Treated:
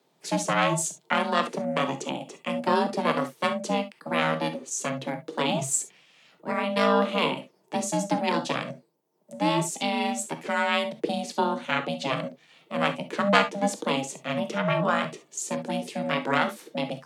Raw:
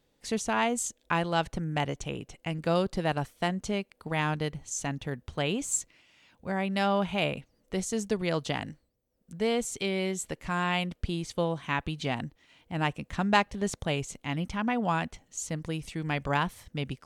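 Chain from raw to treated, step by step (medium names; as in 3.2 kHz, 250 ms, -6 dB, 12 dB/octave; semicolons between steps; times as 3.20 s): ring modulator 270 Hz; gated-style reverb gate 90 ms flat, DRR 7.5 dB; frequency shift +130 Hz; trim +6 dB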